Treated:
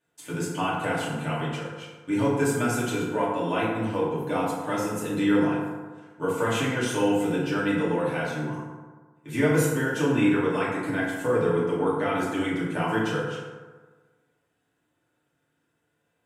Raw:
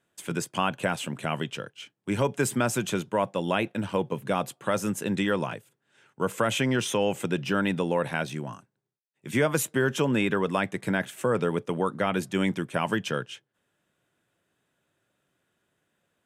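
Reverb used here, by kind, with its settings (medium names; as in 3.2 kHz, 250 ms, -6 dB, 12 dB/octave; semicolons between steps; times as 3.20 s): FDN reverb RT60 1.4 s, low-frequency decay 0.95×, high-frequency decay 0.45×, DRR -9 dB; trim -9 dB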